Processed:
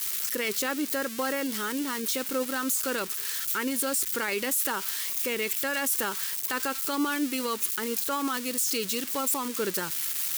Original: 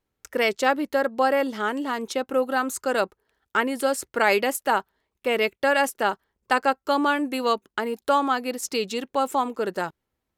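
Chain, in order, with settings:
spike at every zero crossing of −19.5 dBFS
parametric band 700 Hz −14 dB 0.65 octaves
brickwall limiter −19.5 dBFS, peak gain reduction 9.5 dB

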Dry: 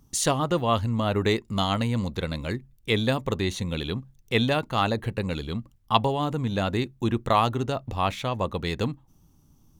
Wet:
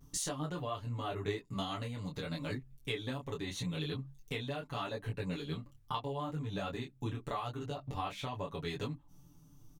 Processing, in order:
comb filter 6.9 ms, depth 92%
pitch vibrato 0.55 Hz 32 cents
downward compressor 6 to 1, threshold −32 dBFS, peak gain reduction 19 dB
micro pitch shift up and down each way 27 cents

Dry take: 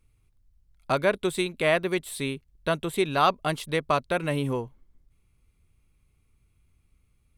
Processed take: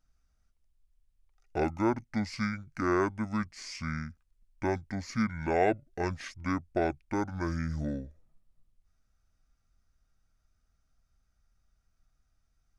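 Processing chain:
wrong playback speed 78 rpm record played at 45 rpm
level −5.5 dB

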